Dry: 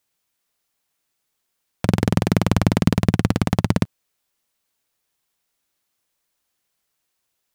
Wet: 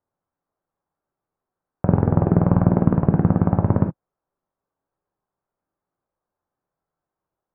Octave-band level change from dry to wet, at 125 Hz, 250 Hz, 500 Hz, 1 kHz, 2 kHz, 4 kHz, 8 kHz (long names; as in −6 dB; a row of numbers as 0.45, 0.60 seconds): +2.0 dB, +1.0 dB, +2.0 dB, +0.5 dB, −11.0 dB, below −30 dB, below −40 dB